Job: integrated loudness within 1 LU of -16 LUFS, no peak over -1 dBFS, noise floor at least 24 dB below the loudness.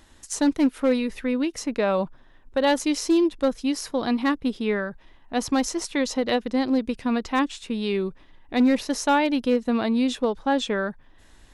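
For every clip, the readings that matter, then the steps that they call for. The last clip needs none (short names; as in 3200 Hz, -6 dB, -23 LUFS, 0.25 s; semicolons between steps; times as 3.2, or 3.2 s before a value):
clipped 0.4%; flat tops at -13.5 dBFS; loudness -24.5 LUFS; peak -13.5 dBFS; loudness target -16.0 LUFS
-> clip repair -13.5 dBFS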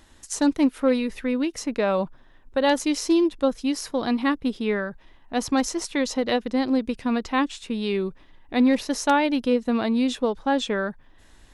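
clipped 0.0%; loudness -24.0 LUFS; peak -6.0 dBFS; loudness target -16.0 LUFS
-> gain +8 dB; limiter -1 dBFS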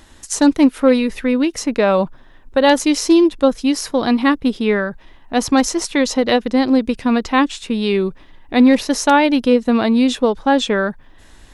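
loudness -16.5 LUFS; peak -1.0 dBFS; noise floor -45 dBFS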